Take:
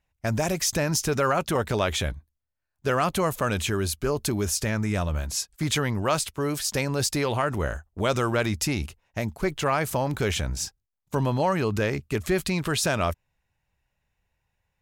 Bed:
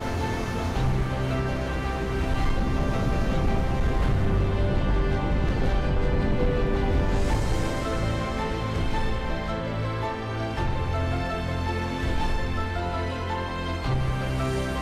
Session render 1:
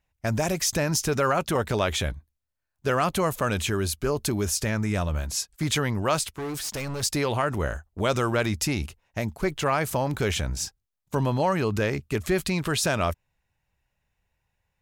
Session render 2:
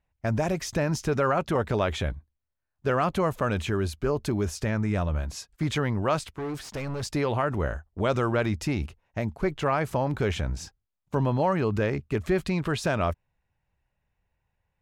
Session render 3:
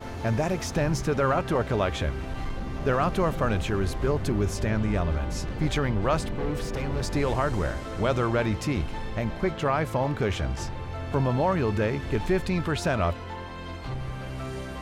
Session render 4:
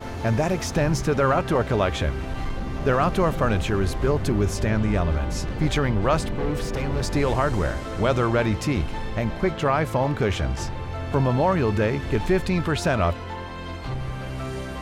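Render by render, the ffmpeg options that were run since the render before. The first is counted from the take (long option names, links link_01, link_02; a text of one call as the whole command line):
ffmpeg -i in.wav -filter_complex "[0:a]asettb=1/sr,asplit=3[link_01][link_02][link_03];[link_01]atrim=end=6.274[link_04];[link_02]atrim=start=6.27:end=7.03,asetpts=PTS-STARTPTS,afade=type=in:duration=0.004:curve=qsin,afade=type=out:start_time=0.756:duration=0.004:curve=qsin,volume=29dB,asoftclip=hard,volume=-29dB[link_05];[link_03]atrim=start=7.026[link_06];[link_04][link_05]acrossfade=duration=0.004:curve1=hsin:curve2=qsin[link_07];[link_07][link_06]acrossfade=duration=0.004:curve1=qsin:curve2=hsin" out.wav
ffmpeg -i in.wav -af "lowpass=frequency=1800:poles=1" out.wav
ffmpeg -i in.wav -i bed.wav -filter_complex "[1:a]volume=-8dB[link_01];[0:a][link_01]amix=inputs=2:normalize=0" out.wav
ffmpeg -i in.wav -af "volume=3.5dB" out.wav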